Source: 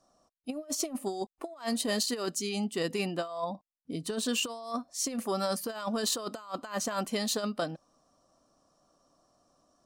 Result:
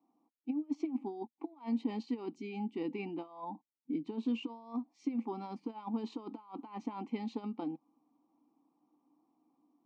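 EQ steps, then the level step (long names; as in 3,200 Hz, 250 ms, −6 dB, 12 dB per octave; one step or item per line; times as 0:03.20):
formant filter u
high-frequency loss of the air 130 metres
loudspeaker in its box 150–9,300 Hz, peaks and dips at 150 Hz +5 dB, 230 Hz +7 dB, 490 Hz +8 dB, 820 Hz +3 dB
+5.0 dB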